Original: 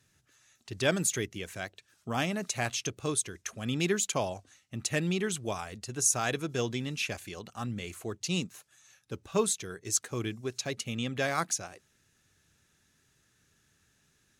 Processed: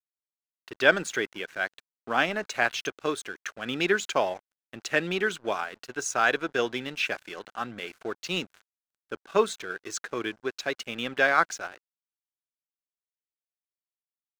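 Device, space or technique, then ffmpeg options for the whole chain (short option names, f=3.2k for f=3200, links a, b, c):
pocket radio on a weak battery: -af "highpass=350,lowpass=3.5k,aeval=exprs='sgn(val(0))*max(abs(val(0))-0.00211,0)':c=same,equalizer=f=1.5k:t=o:w=0.31:g=8,volume=7dB"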